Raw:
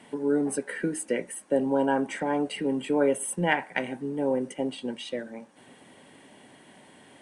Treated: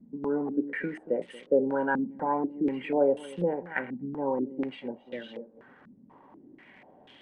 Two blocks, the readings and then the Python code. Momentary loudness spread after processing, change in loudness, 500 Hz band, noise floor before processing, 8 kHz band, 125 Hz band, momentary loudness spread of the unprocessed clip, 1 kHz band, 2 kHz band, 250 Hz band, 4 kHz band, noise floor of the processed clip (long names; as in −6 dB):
14 LU, −2.0 dB, −1.0 dB, −54 dBFS, below −25 dB, −4.5 dB, 10 LU, −1.0 dB, −3.5 dB, −2.5 dB, −10.5 dB, −57 dBFS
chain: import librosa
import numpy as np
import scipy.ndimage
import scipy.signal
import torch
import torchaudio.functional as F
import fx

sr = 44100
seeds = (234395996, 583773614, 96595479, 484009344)

p1 = fx.notch(x, sr, hz=660.0, q=12.0)
p2 = fx.dmg_crackle(p1, sr, seeds[0], per_s=190.0, level_db=-40.0)
p3 = p2 + fx.echo_single(p2, sr, ms=232, db=-15.5, dry=0)
p4 = fx.filter_held_lowpass(p3, sr, hz=4.1, low_hz=220.0, high_hz=3200.0)
y = p4 * librosa.db_to_amplitude(-5.5)